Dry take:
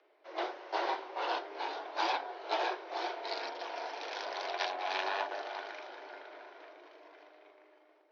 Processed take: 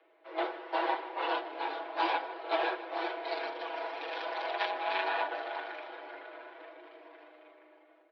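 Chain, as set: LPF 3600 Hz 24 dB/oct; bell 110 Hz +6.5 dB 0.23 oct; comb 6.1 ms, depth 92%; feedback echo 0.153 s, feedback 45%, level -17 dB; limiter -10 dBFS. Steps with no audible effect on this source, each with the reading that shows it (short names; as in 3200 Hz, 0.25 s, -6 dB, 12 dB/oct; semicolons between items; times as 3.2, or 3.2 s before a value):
bell 110 Hz: input band starts at 270 Hz; limiter -10 dBFS: input peak -17.0 dBFS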